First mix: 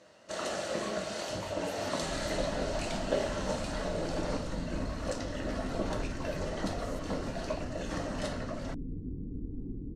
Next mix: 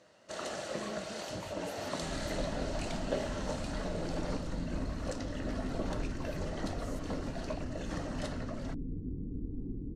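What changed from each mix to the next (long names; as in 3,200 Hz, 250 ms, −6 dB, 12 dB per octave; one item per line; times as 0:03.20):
first sound: send −7.5 dB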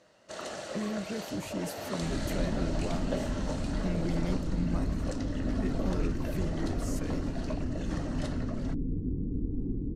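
speech +11.5 dB
second sound +6.5 dB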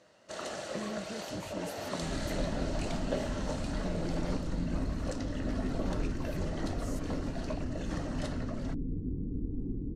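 speech −6.0 dB
second sound −3.0 dB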